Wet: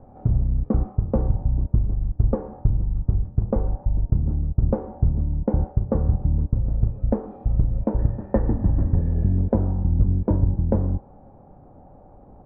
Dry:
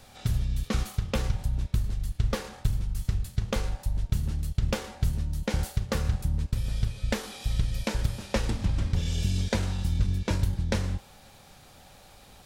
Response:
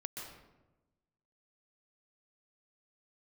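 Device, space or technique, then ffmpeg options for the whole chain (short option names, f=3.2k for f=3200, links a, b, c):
under water: -filter_complex "[0:a]lowpass=f=850:w=0.5412,lowpass=f=850:w=1.3066,equalizer=f=290:t=o:w=0.52:g=5.5,asettb=1/sr,asplit=3[a][b][c];[a]atrim=end=7.994[d];[b]atrim=start=7.99:end=9.39,asetpts=PTS-STARTPTS,afade=t=in:d=0.004:c=qsin,afade=t=out:st=1.396:d=0.004:c=qsin,equalizer=f=1.8k:t=o:w=0.3:g=15[e];[c]atrim=start=9.386[f];[d][e]acrossfade=d=0.004:c1=hsin:c2=qsin[g];[g][f]acrossfade=d=0.004:c1=qsin:c2=hsin,volume=6.5dB"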